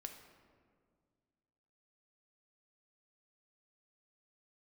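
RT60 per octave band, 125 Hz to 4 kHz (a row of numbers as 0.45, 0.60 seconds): 2.4, 2.4, 2.1, 1.8, 1.4, 1.0 seconds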